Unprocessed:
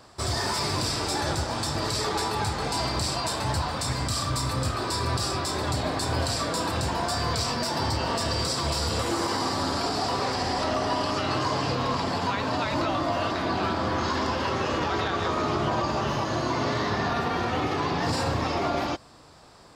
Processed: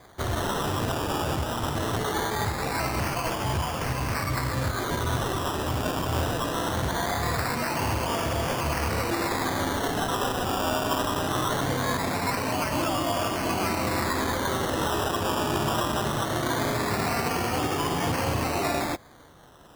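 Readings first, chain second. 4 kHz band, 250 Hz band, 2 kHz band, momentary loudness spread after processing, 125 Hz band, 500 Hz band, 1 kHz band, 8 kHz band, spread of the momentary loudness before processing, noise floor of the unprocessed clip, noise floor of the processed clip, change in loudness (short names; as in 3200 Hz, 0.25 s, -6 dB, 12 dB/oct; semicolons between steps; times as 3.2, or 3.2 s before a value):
-3.0 dB, +0.5 dB, +1.5 dB, 2 LU, +0.5 dB, +0.5 dB, -0.5 dB, -0.5 dB, 2 LU, -32 dBFS, -32 dBFS, 0.0 dB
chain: decimation with a swept rate 16×, swing 60% 0.21 Hz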